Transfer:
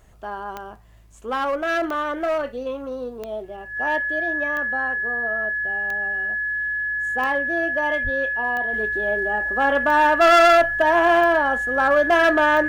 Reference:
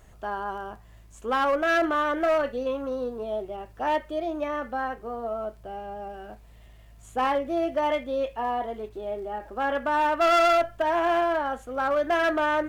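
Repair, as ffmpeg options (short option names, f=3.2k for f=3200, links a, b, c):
-filter_complex "[0:a]adeclick=t=4,bandreject=f=1.7k:w=30,asplit=3[a][b][c];[a]afade=t=out:st=8.03:d=0.02[d];[b]highpass=f=140:w=0.5412,highpass=f=140:w=1.3066,afade=t=in:st=8.03:d=0.02,afade=t=out:st=8.15:d=0.02[e];[c]afade=t=in:st=8.15:d=0.02[f];[d][e][f]amix=inputs=3:normalize=0,asetnsamples=n=441:p=0,asendcmd='8.73 volume volume -6.5dB',volume=0dB"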